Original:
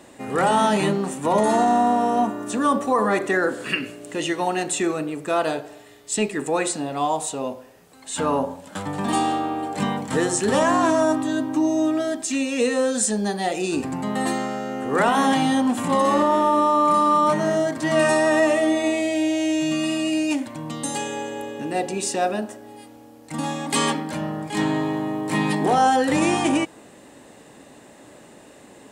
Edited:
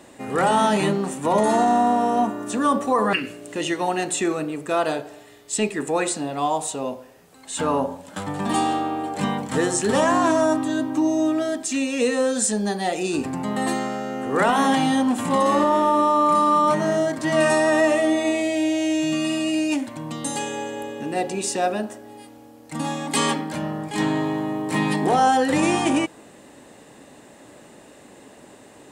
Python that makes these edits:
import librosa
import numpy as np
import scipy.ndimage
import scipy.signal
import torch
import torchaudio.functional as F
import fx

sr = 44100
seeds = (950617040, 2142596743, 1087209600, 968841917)

y = fx.edit(x, sr, fx.cut(start_s=3.13, length_s=0.59), tone=tone)